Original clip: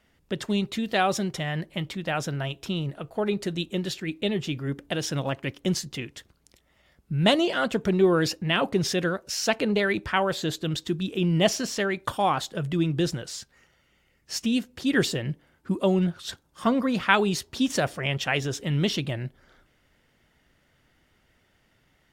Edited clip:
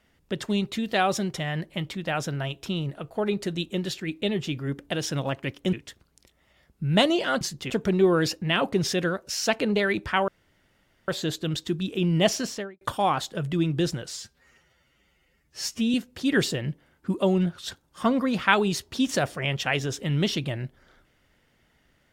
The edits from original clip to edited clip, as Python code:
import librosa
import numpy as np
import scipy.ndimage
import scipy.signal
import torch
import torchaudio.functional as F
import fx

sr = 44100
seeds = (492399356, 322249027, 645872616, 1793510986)

y = fx.studio_fade_out(x, sr, start_s=11.63, length_s=0.38)
y = fx.edit(y, sr, fx.move(start_s=5.73, length_s=0.29, to_s=7.7),
    fx.insert_room_tone(at_s=10.28, length_s=0.8),
    fx.stretch_span(start_s=13.37, length_s=1.18, factor=1.5), tone=tone)